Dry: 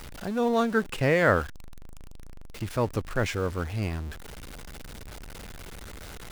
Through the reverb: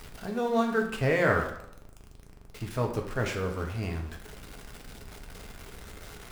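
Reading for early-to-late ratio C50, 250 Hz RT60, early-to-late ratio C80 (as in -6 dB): 6.5 dB, 0.80 s, 10.0 dB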